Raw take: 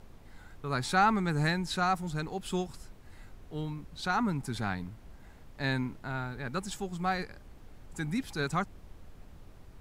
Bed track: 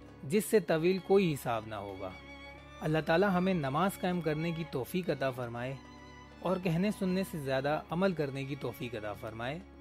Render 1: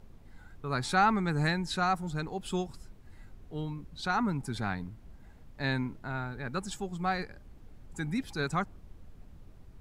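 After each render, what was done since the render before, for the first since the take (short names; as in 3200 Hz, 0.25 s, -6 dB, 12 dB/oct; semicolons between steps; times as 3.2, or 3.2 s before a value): denoiser 6 dB, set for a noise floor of -52 dBFS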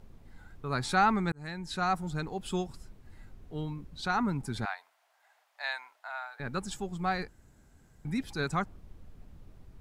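1.32–1.93 fade in; 4.65–6.4 Chebyshev high-pass 680 Hz, order 4; 7.28–8.05 room tone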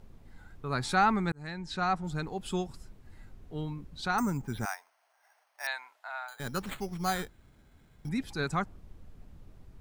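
1.42–2.03 LPF 8300 Hz -> 5100 Hz; 4.18–5.67 careless resampling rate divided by 6×, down filtered, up hold; 6.28–8.09 careless resampling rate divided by 8×, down none, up hold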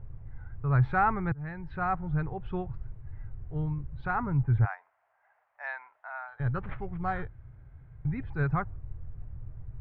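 LPF 2000 Hz 24 dB/oct; resonant low shelf 160 Hz +9 dB, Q 3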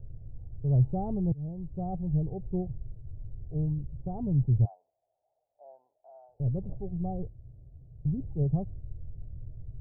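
steep low-pass 670 Hz 48 dB/oct; dynamic EQ 190 Hz, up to +5 dB, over -44 dBFS, Q 2.8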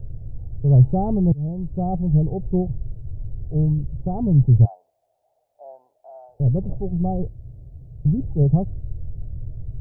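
gain +10.5 dB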